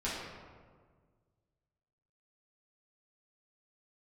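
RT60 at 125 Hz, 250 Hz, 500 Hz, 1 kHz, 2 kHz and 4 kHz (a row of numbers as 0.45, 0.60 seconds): 2.4, 2.0, 1.8, 1.5, 1.2, 0.85 seconds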